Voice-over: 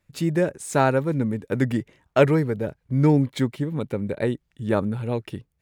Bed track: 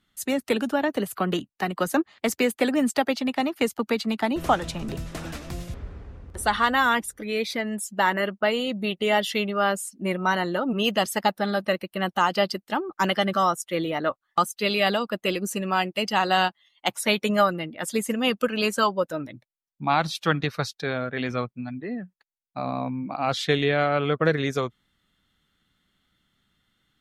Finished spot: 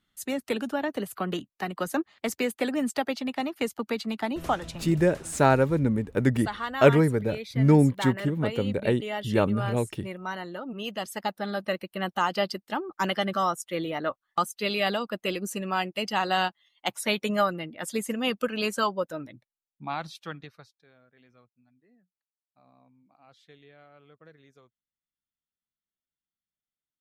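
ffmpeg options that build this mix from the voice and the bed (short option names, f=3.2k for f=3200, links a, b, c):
-filter_complex "[0:a]adelay=4650,volume=-0.5dB[a];[1:a]volume=2dB,afade=t=out:st=4.46:d=0.69:silence=0.501187,afade=t=in:st=10.92:d=0.91:silence=0.446684,afade=t=out:st=18.93:d=1.81:silence=0.0398107[b];[a][b]amix=inputs=2:normalize=0"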